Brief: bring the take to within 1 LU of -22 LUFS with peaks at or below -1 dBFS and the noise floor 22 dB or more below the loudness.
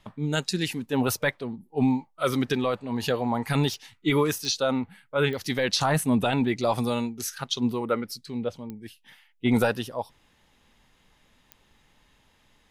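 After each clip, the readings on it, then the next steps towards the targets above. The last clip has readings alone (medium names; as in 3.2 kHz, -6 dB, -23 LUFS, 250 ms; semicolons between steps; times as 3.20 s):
clicks found 5; loudness -26.5 LUFS; peak level -13.0 dBFS; loudness target -22.0 LUFS
-> de-click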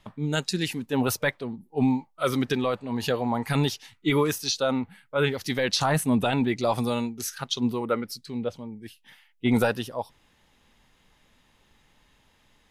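clicks found 0; loudness -26.5 LUFS; peak level -13.0 dBFS; loudness target -22.0 LUFS
-> trim +4.5 dB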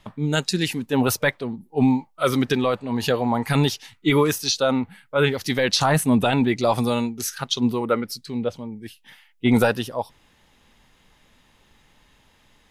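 loudness -22.0 LUFS; peak level -8.5 dBFS; noise floor -60 dBFS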